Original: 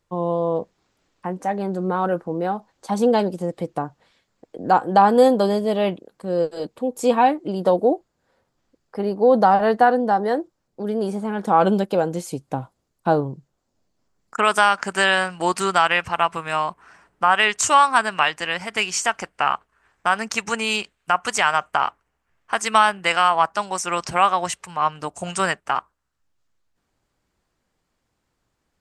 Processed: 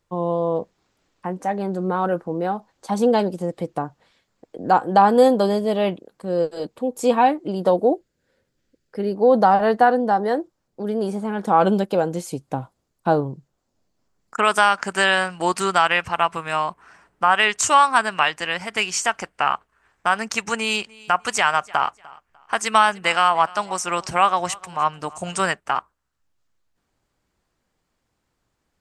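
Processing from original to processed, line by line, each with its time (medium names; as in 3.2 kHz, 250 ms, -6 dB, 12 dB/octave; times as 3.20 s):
7.94–9.15 s: high-order bell 910 Hz -10.5 dB 1.1 oct
20.57–25.39 s: feedback delay 299 ms, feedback 27%, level -22.5 dB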